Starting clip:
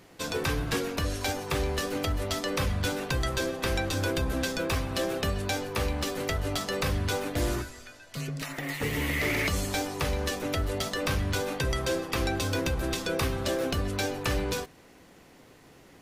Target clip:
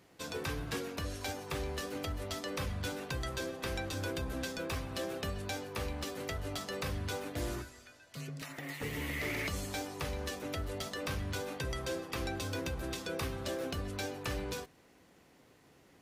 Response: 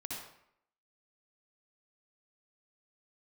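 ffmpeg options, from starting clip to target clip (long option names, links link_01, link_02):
-af "highpass=40,volume=-8.5dB"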